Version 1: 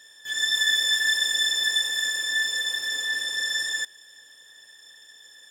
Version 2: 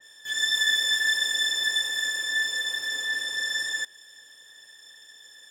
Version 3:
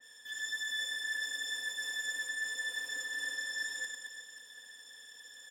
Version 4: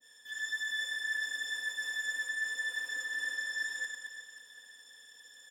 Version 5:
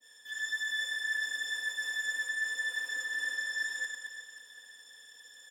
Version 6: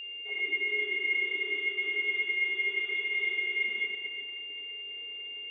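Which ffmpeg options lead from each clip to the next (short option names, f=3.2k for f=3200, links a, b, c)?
-af "adynamicequalizer=threshold=0.0224:dfrequency=2500:dqfactor=0.7:tfrequency=2500:tqfactor=0.7:attack=5:release=100:ratio=0.375:range=1.5:mode=cutabove:tftype=highshelf"
-af "aecho=1:1:4.1:0.72,areverse,acompressor=threshold=-31dB:ratio=6,areverse,aecho=1:1:100|220|364|536.8|744.2:0.631|0.398|0.251|0.158|0.1,volume=-6.5dB"
-af "adynamicequalizer=threshold=0.00355:dfrequency=1500:dqfactor=1:tfrequency=1500:tqfactor=1:attack=5:release=100:ratio=0.375:range=3:mode=boostabove:tftype=bell,volume=-3dB"
-af "highpass=220,volume=1.5dB"
-af "lowpass=f=3.3k:t=q:w=0.5098,lowpass=f=3.3k:t=q:w=0.6013,lowpass=f=3.3k:t=q:w=0.9,lowpass=f=3.3k:t=q:w=2.563,afreqshift=-3900,acontrast=49,aeval=exprs='val(0)+0.0158*sin(2*PI*2800*n/s)':c=same,volume=-2dB"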